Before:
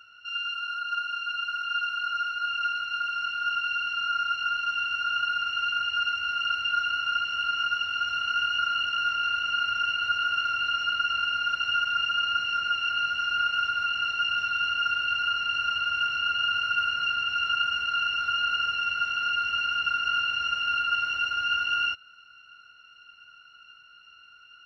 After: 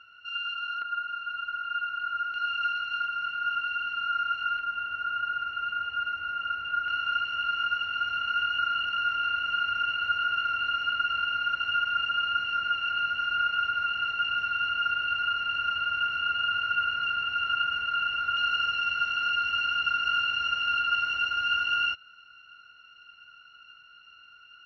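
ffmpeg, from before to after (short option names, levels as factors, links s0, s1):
-af "asetnsamples=n=441:p=0,asendcmd='0.82 lowpass f 1800;2.34 lowpass f 3300;3.05 lowpass f 2300;4.59 lowpass f 1600;6.88 lowpass f 2700;18.37 lowpass f 4800',lowpass=3200"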